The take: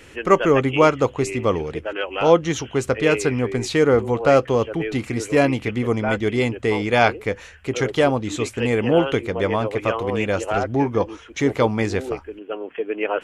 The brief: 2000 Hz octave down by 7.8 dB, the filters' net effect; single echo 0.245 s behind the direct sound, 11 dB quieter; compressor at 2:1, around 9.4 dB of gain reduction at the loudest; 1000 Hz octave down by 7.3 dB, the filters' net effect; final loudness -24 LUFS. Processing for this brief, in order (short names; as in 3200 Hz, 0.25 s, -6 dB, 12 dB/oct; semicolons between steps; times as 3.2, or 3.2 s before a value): bell 1000 Hz -8.5 dB; bell 2000 Hz -7.5 dB; compressor 2:1, threshold -30 dBFS; echo 0.245 s -11 dB; gain +5.5 dB